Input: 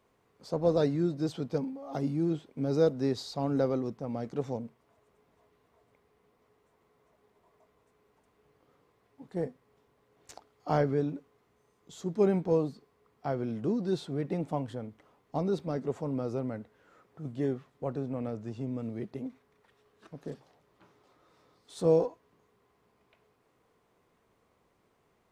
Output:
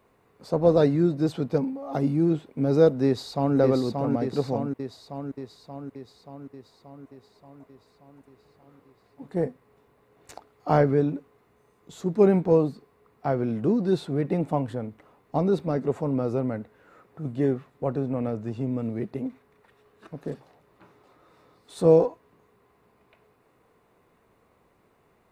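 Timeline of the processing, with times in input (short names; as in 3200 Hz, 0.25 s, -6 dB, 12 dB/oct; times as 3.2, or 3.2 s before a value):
3.05–3.57 echo throw 0.58 s, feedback 65%, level -3.5 dB
whole clip: bell 5800 Hz -7 dB 0.97 oct; notch 3200 Hz, Q 12; gain +7 dB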